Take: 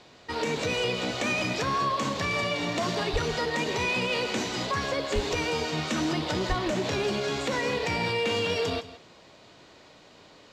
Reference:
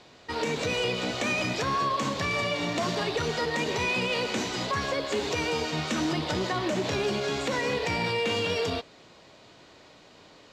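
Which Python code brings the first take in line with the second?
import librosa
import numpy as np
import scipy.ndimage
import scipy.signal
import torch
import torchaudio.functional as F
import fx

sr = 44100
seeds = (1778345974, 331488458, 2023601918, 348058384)

y = fx.fix_declip(x, sr, threshold_db=-17.5)
y = fx.fix_deplosive(y, sr, at_s=(3.12, 5.14, 6.48))
y = fx.fix_echo_inverse(y, sr, delay_ms=165, level_db=-15.5)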